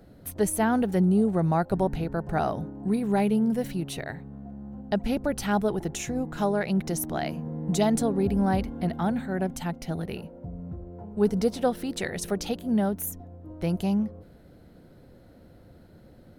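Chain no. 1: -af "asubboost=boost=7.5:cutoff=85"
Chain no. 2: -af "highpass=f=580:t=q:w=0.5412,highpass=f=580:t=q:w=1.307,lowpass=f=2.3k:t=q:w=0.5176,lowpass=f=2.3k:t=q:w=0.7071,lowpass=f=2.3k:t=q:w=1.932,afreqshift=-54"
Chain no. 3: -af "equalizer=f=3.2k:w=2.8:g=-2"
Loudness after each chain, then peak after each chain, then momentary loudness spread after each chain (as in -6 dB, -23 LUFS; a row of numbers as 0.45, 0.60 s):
-28.5, -35.0, -27.0 LUFS; -7.0, -16.0, -12.0 dBFS; 18, 14, 15 LU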